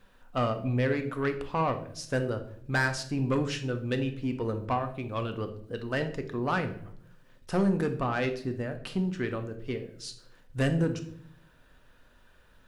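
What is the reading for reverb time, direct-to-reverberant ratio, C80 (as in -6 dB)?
0.65 s, 6.5 dB, 15.5 dB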